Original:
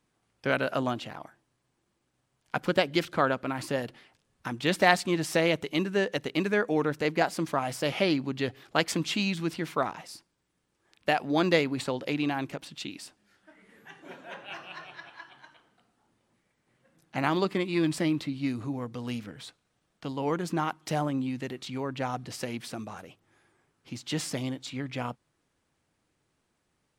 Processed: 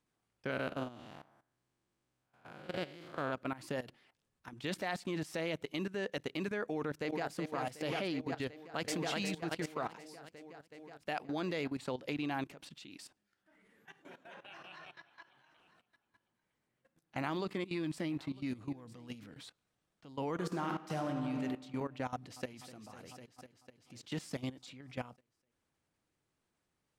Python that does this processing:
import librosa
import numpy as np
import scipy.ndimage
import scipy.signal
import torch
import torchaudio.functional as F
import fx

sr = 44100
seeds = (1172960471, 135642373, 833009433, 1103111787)

y = fx.spec_blur(x, sr, span_ms=229.0, at=(0.5, 3.31), fade=0.02)
y = fx.echo_throw(y, sr, start_s=6.69, length_s=0.64, ms=370, feedback_pct=85, wet_db=-7.5)
y = fx.echo_throw(y, sr, start_s=8.47, length_s=0.48, ms=370, feedback_pct=40, wet_db=-2.0)
y = fx.echo_single(y, sr, ms=952, db=-20.5, at=(15.12, 19.39), fade=0.02)
y = fx.reverb_throw(y, sr, start_s=20.31, length_s=1.12, rt60_s=2.2, drr_db=3.0)
y = fx.echo_throw(y, sr, start_s=22.11, length_s=0.4, ms=250, feedback_pct=75, wet_db=-7.0)
y = fx.level_steps(y, sr, step_db=16)
y = F.gain(torch.from_numpy(y), -4.0).numpy()